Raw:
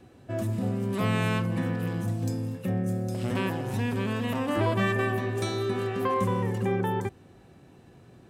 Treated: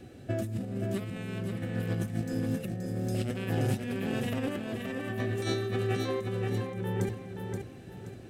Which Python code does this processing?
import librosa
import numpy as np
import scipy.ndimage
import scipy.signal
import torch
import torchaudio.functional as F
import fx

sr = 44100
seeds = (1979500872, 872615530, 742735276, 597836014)

y = fx.peak_eq(x, sr, hz=1000.0, db=-14.0, octaves=0.43)
y = fx.over_compress(y, sr, threshold_db=-32.0, ratio=-0.5)
y = fx.echo_feedback(y, sr, ms=526, feedback_pct=32, wet_db=-5)